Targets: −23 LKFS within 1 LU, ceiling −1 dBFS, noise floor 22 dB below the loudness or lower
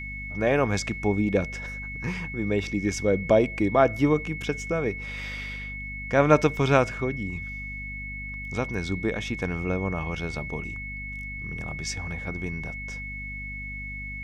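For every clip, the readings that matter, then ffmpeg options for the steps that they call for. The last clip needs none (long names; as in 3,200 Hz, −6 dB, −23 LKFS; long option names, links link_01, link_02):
mains hum 50 Hz; hum harmonics up to 250 Hz; level of the hum −36 dBFS; interfering tone 2,200 Hz; level of the tone −35 dBFS; integrated loudness −27.5 LKFS; sample peak −5.0 dBFS; target loudness −23.0 LKFS
→ -af "bandreject=frequency=50:width_type=h:width=4,bandreject=frequency=100:width_type=h:width=4,bandreject=frequency=150:width_type=h:width=4,bandreject=frequency=200:width_type=h:width=4,bandreject=frequency=250:width_type=h:width=4"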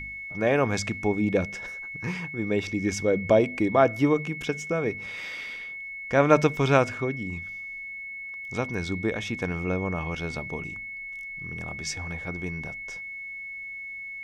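mains hum none found; interfering tone 2,200 Hz; level of the tone −35 dBFS
→ -af "bandreject=frequency=2200:width=30"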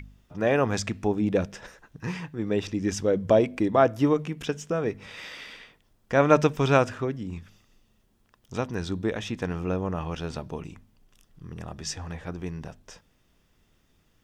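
interfering tone none found; integrated loudness −26.5 LKFS; sample peak −5.0 dBFS; target loudness −23.0 LKFS
→ -af "volume=3.5dB"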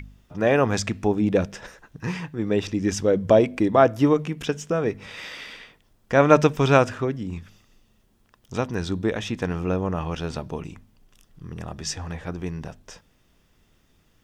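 integrated loudness −23.0 LKFS; sample peak −1.5 dBFS; background noise floor −63 dBFS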